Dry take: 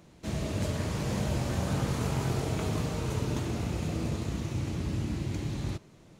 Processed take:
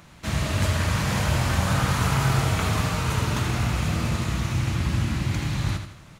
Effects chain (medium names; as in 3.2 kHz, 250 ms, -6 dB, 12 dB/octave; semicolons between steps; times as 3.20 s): FFT filter 110 Hz 0 dB, 410 Hz -9 dB, 1.3 kHz +6 dB, 6.6 kHz 0 dB, 12 kHz +3 dB; feedback delay 81 ms, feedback 41%, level -8 dB; trim +8 dB